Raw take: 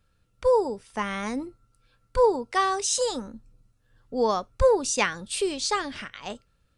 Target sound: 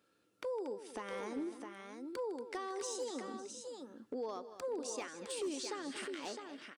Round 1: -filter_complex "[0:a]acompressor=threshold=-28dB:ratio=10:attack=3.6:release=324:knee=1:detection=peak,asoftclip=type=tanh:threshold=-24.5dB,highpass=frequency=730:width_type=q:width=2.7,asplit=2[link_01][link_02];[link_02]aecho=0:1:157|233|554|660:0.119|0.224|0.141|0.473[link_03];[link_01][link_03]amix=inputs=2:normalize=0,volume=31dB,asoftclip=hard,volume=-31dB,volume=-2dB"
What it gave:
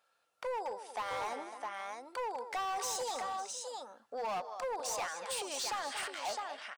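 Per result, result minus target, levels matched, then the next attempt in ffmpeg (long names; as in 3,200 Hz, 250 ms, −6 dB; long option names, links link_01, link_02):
250 Hz band −15.5 dB; downward compressor: peak gain reduction −8.5 dB
-filter_complex "[0:a]acompressor=threshold=-28dB:ratio=10:attack=3.6:release=324:knee=1:detection=peak,asoftclip=type=tanh:threshold=-24.5dB,highpass=frequency=320:width_type=q:width=2.7,asplit=2[link_01][link_02];[link_02]aecho=0:1:157|233|554|660:0.119|0.224|0.141|0.473[link_03];[link_01][link_03]amix=inputs=2:normalize=0,volume=31dB,asoftclip=hard,volume=-31dB,volume=-2dB"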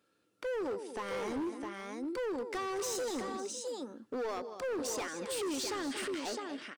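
downward compressor: peak gain reduction −8.5 dB
-filter_complex "[0:a]acompressor=threshold=-37.5dB:ratio=10:attack=3.6:release=324:knee=1:detection=peak,asoftclip=type=tanh:threshold=-24.5dB,highpass=frequency=320:width_type=q:width=2.7,asplit=2[link_01][link_02];[link_02]aecho=0:1:157|233|554|660:0.119|0.224|0.141|0.473[link_03];[link_01][link_03]amix=inputs=2:normalize=0,volume=31dB,asoftclip=hard,volume=-31dB,volume=-2dB"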